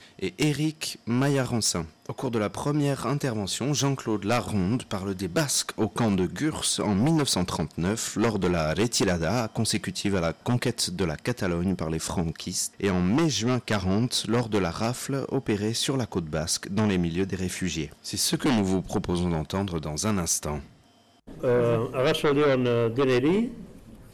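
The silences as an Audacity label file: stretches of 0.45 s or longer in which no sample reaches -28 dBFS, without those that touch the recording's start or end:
20.580000	21.430000	silence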